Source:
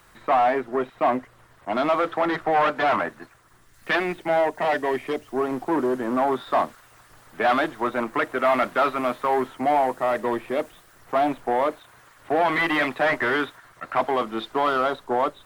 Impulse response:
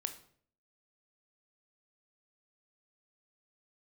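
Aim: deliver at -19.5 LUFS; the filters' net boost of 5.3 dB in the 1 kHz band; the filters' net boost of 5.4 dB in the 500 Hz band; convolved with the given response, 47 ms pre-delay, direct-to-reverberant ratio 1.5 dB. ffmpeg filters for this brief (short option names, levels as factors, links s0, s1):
-filter_complex "[0:a]equalizer=f=500:t=o:g=5.5,equalizer=f=1000:t=o:g=5,asplit=2[s0][s1];[1:a]atrim=start_sample=2205,adelay=47[s2];[s1][s2]afir=irnorm=-1:irlink=0,volume=0.891[s3];[s0][s3]amix=inputs=2:normalize=0,volume=0.75"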